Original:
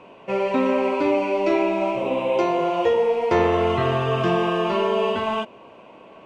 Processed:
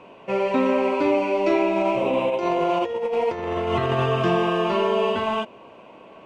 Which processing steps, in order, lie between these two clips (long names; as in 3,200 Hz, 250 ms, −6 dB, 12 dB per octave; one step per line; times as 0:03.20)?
0:01.76–0:04.06: compressor whose output falls as the input rises −22 dBFS, ratio −0.5